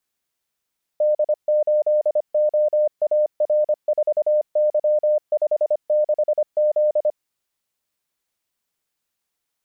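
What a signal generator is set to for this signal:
Morse code "D8OAR4Y56Z" 25 words per minute 604 Hz −14.5 dBFS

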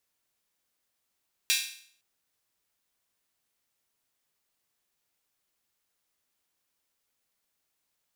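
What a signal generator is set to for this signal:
open synth hi-hat length 0.51 s, high-pass 2,700 Hz, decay 0.56 s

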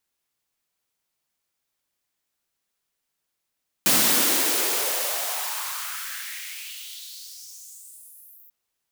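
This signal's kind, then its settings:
filter sweep on noise white, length 4.64 s highpass, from 180 Hz, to 15,000 Hz, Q 3, exponential, gain ramp −34.5 dB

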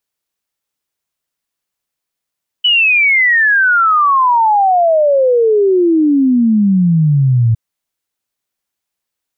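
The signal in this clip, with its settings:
exponential sine sweep 3,000 Hz → 110 Hz 4.91 s −7.5 dBFS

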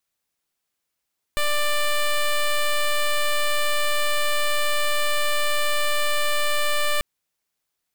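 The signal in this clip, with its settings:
pulse wave 591 Hz, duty 10% −20.5 dBFS 5.64 s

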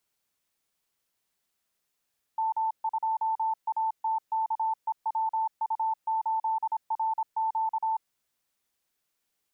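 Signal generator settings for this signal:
Morse code "M2ATKEWU8RQ" 26 words per minute 887 Hz −24.5 dBFS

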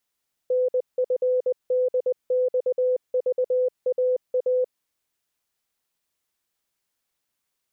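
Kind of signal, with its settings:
Morse code "NFDXVAA" 20 words per minute 505 Hz −18.5 dBFS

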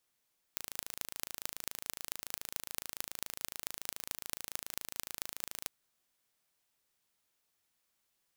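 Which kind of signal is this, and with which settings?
impulse train 27.1 per second, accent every 6, −7.5 dBFS 5.10 s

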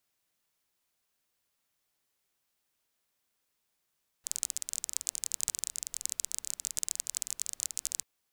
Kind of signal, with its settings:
rain-like ticks over hiss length 3.79 s, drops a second 24, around 7,300 Hz, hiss −27 dB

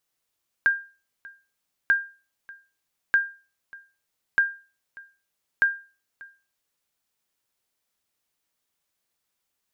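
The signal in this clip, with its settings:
ping with an echo 1,600 Hz, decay 0.34 s, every 1.24 s, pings 5, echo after 0.59 s, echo −23.5 dB −12 dBFS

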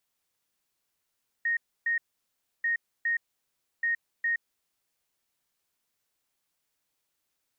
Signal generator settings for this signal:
beeps in groups sine 1,860 Hz, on 0.12 s, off 0.29 s, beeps 2, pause 0.66 s, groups 3, −24 dBFS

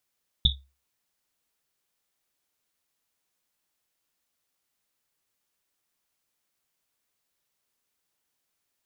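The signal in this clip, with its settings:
drum after Risset, pitch 68 Hz, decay 0.31 s, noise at 3,600 Hz, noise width 340 Hz, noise 60%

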